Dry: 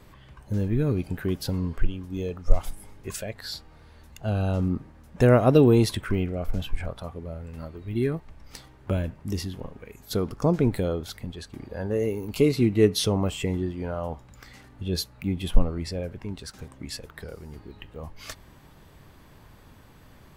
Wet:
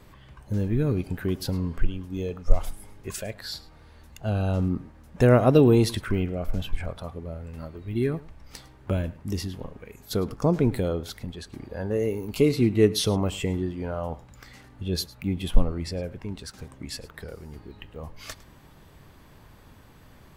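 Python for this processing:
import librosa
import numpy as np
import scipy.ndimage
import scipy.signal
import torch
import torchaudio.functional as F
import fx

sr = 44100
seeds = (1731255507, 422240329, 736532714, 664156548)

y = x + 10.0 ** (-20.0 / 20.0) * np.pad(x, (int(106 * sr / 1000.0), 0))[:len(x)]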